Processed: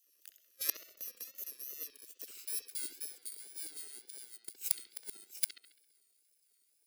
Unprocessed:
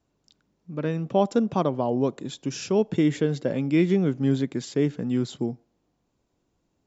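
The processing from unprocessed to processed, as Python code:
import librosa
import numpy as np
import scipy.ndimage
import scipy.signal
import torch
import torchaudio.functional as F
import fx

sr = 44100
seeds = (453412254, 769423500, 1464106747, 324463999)

y = fx.bit_reversed(x, sr, seeds[0], block=64)
y = fx.doppler_pass(y, sr, speed_mps=41, closest_m=29.0, pass_at_s=2.36)
y = fx.low_shelf(y, sr, hz=380.0, db=5.0)
y = fx.filter_lfo_highpass(y, sr, shape='saw_down', hz=9.8, low_hz=470.0, high_hz=4300.0, q=1.3)
y = fx.fixed_phaser(y, sr, hz=390.0, stages=4)
y = fx.gate_flip(y, sr, shuts_db=-32.0, range_db=-33)
y = fx.bass_treble(y, sr, bass_db=-4, treble_db=10)
y = fx.echo_bbd(y, sr, ms=67, stages=2048, feedback_pct=51, wet_db=-8.0)
y = fx.wow_flutter(y, sr, seeds[1], rate_hz=2.1, depth_cents=120.0)
y = y * librosa.db_to_amplitude(10.5)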